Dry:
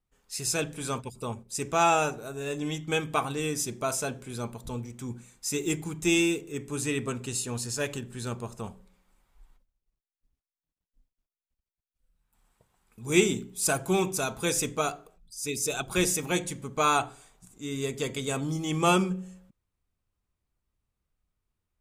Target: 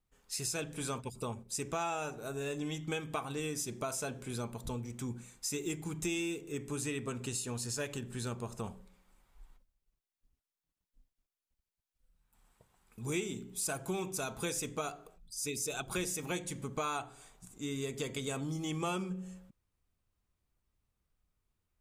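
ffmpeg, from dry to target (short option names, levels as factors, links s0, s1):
-af "acompressor=threshold=0.0178:ratio=4"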